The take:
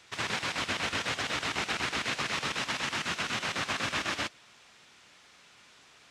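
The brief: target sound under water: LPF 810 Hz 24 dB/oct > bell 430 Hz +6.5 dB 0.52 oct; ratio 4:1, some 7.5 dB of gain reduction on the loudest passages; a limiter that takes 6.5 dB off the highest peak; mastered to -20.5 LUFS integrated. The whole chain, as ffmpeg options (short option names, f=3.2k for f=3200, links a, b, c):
-af "acompressor=threshold=-37dB:ratio=4,alimiter=level_in=6dB:limit=-24dB:level=0:latency=1,volume=-6dB,lowpass=f=810:w=0.5412,lowpass=f=810:w=1.3066,equalizer=f=430:t=o:w=0.52:g=6.5,volume=27.5dB"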